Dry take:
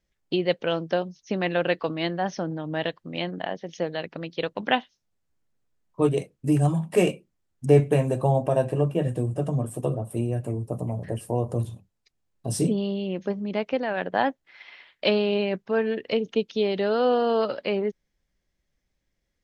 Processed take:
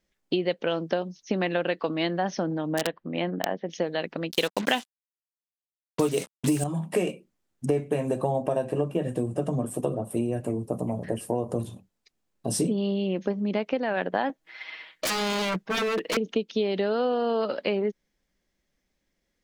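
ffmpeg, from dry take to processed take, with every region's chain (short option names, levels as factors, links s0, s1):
-filter_complex "[0:a]asettb=1/sr,asplit=3[s0][s1][s2];[s0]atrim=end=2.724[s3];[s1]atrim=start=2.72:end=3.7,asetpts=PTS-STARTPTS,afade=t=in:d=0.004:c=qsin,afade=t=out:st=0.976:d=0.004:c=qsin,lowpass=2300,aeval=exprs='(mod(6.68*val(0)+1,2)-1)/6.68':c=same[s4];[s2]atrim=start=3.696[s5];[s3][s4]acrossfade=d=0.004:c1=hsin:c2=qsin[s6];[s6][s5]acrossfade=d=0.004:c1=qsin:c2=hsin,asettb=1/sr,asplit=3[s7][s8][s9];[s7]atrim=end=4.314[s10];[s8]atrim=start=4.31:end=6.64,asetpts=PTS-STARTPTS,afade=t=in:d=0.004:c=qsin,afade=t=out:st=2.326:d=0.004:c=qsin,acrusher=bits=6:mix=0:aa=0.5,equalizer=f=7800:t=o:w=2.7:g=11.5,acontrast=66[s11];[s9]atrim=start=6.636[s12];[s10][s11]acrossfade=d=0.004:c1=hsin:c2=qsin[s13];[s13][s12]acrossfade=d=0.004:c1=qsin:c2=hsin,asettb=1/sr,asplit=3[s14][s15][s16];[s14]atrim=end=14.294[s17];[s15]atrim=start=14.29:end=16.17,asetpts=PTS-STARTPTS,afade=t=in:d=0.004:c=qsin,afade=t=out:st=1.876:d=0.004:c=qsin,aecho=1:1:6.3:0.97,atrim=end_sample=82908,aeval=exprs='0.0631*(abs(mod(val(0)/0.0631+3,4)-2)-1)':c=same[s18];[s16]atrim=start=16.166[s19];[s17][s18]acrossfade=d=0.004:c1=hsin:c2=qsin[s20];[s20][s19]acrossfade=d=0.004:c1=qsin:c2=hsin,lowshelf=f=160:t=q:w=1.5:g=-6,acompressor=threshold=0.0562:ratio=6,volume=1.41"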